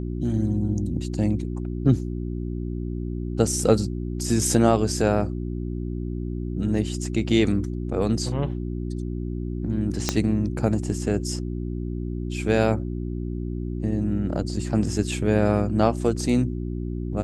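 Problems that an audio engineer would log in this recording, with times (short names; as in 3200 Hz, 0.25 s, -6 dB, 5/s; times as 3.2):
hum 60 Hz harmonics 6 -29 dBFS
10.09 pop -6 dBFS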